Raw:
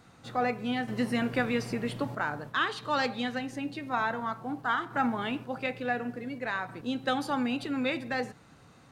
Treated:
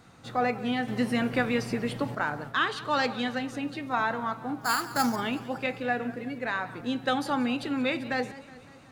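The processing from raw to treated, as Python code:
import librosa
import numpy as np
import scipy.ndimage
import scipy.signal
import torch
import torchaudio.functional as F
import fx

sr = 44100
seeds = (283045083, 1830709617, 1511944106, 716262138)

y = fx.sample_hold(x, sr, seeds[0], rate_hz=5900.0, jitter_pct=0, at=(4.61, 5.16))
y = fx.echo_warbled(y, sr, ms=185, feedback_pct=61, rate_hz=2.8, cents=137, wet_db=-18)
y = F.gain(torch.from_numpy(y), 2.0).numpy()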